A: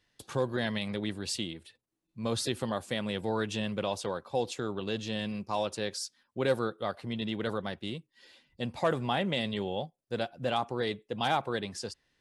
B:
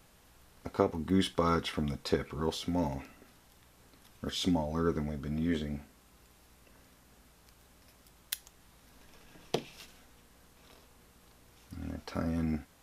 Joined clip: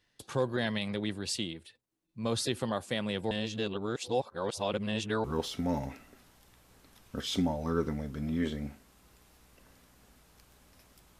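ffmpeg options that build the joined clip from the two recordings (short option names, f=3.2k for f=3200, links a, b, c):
-filter_complex "[0:a]apad=whole_dur=11.19,atrim=end=11.19,asplit=2[a][b];[a]atrim=end=3.312[c];[b]atrim=start=3.308:end=5.242,asetpts=PTS-STARTPTS,areverse[d];[1:a]atrim=start=2.328:end=8.28[e];[c][d]acrossfade=d=0.004:c1=hsin:c2=hsin[f];[f][e]acrossfade=d=0.004:c1=hsin:c2=hsin"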